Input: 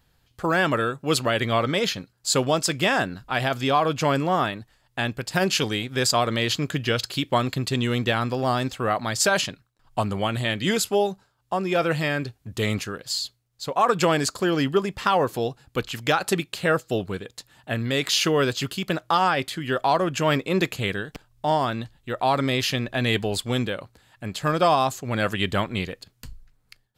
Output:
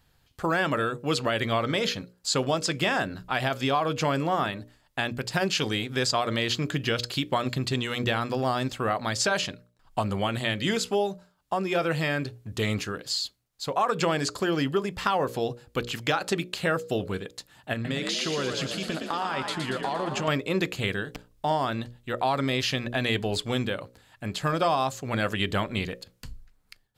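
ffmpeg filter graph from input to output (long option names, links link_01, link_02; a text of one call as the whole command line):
ffmpeg -i in.wav -filter_complex "[0:a]asettb=1/sr,asplit=3[link_01][link_02][link_03];[link_01]atrim=end=17.734[link_04];[link_02]atrim=start=17.73:end=20.28,asetpts=PTS-STARTPTS,afade=type=in:duration=0.004:curve=qsin,afade=type=out:start_time=2.546:duration=0.004:curve=qsin,lowpass=frequency=11000:width=0.5412,lowpass=frequency=11000:width=1.3066,acompressor=threshold=-26dB:ratio=4:attack=3.2:release=140:knee=1:detection=peak,asplit=9[link_05][link_06][link_07][link_08][link_09][link_10][link_11][link_12][link_13];[link_06]adelay=116,afreqshift=43,volume=-6dB[link_14];[link_07]adelay=232,afreqshift=86,volume=-10.4dB[link_15];[link_08]adelay=348,afreqshift=129,volume=-14.9dB[link_16];[link_09]adelay=464,afreqshift=172,volume=-19.3dB[link_17];[link_10]adelay=580,afreqshift=215,volume=-23.7dB[link_18];[link_11]adelay=696,afreqshift=258,volume=-28.2dB[link_19];[link_12]adelay=812,afreqshift=301,volume=-32.6dB[link_20];[link_13]adelay=928,afreqshift=344,volume=-37.1dB[link_21];[link_05][link_14][link_15][link_16][link_17][link_18][link_19][link_20][link_21]amix=inputs=9:normalize=0,atrim=end_sample=112455[link_22];[link_03]atrim=start=20.276[link_23];[link_04][link_22]acrossfade=duration=0.004:curve1=hsin:curve2=qsin[link_24];[link_24][link_23]acrossfade=duration=0.004:curve1=qsin:curve2=hsin,acrossover=split=7500[link_25][link_26];[link_26]acompressor=threshold=-45dB:ratio=4:attack=1:release=60[link_27];[link_25][link_27]amix=inputs=2:normalize=0,bandreject=frequency=60:width_type=h:width=6,bandreject=frequency=120:width_type=h:width=6,bandreject=frequency=180:width_type=h:width=6,bandreject=frequency=240:width_type=h:width=6,bandreject=frequency=300:width_type=h:width=6,bandreject=frequency=360:width_type=h:width=6,bandreject=frequency=420:width_type=h:width=6,bandreject=frequency=480:width_type=h:width=6,bandreject=frequency=540:width_type=h:width=6,bandreject=frequency=600:width_type=h:width=6,acompressor=threshold=-24dB:ratio=2" out.wav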